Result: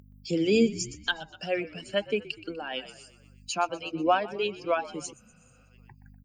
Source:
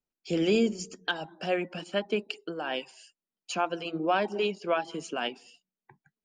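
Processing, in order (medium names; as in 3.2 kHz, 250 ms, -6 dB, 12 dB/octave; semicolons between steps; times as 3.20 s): expander on every frequency bin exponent 1.5; hum 50 Hz, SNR 35 dB; high-pass 57 Hz; treble shelf 4.8 kHz +5 dB; in parallel at -1 dB: upward compressor, threshold -30 dBFS; on the sum: frequency-shifting echo 123 ms, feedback 57%, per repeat -53 Hz, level -17.5 dB; spectral replace 5.15–5.66 s, 230–5900 Hz after; random flutter of the level, depth 55%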